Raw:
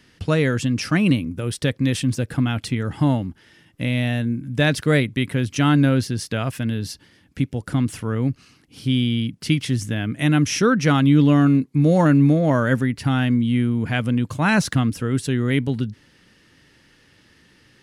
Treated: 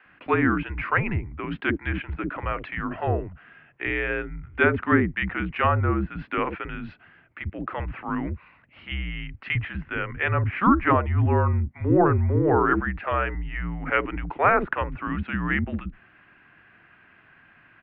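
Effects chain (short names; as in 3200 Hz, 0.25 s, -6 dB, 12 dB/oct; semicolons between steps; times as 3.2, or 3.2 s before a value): bands offset in time highs, lows 50 ms, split 540 Hz; treble ducked by the level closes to 1400 Hz, closed at -13.5 dBFS; mistuned SSB -190 Hz 370–2600 Hz; gain +4.5 dB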